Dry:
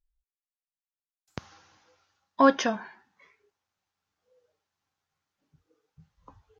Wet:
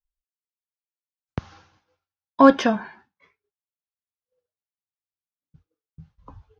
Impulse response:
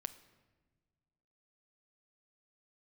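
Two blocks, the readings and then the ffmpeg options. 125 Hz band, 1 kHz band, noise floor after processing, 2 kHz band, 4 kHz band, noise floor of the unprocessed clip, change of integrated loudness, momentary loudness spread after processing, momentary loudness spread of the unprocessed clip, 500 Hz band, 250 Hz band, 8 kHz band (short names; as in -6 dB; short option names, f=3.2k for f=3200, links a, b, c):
+11.0 dB, +5.0 dB, under -85 dBFS, +3.5 dB, +2.5 dB, under -85 dBFS, +6.5 dB, 21 LU, 12 LU, +6.0 dB, +8.0 dB, n/a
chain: -filter_complex "[0:a]lowshelf=f=190:g=9.5,bandreject=f=1.9k:w=19,acrossover=split=460|1400[a][b][c];[c]asoftclip=type=hard:threshold=-28dB[d];[a][b][d]amix=inputs=3:normalize=0,agate=range=-33dB:threshold=-53dB:ratio=3:detection=peak,lowpass=4.8k,volume=5dB"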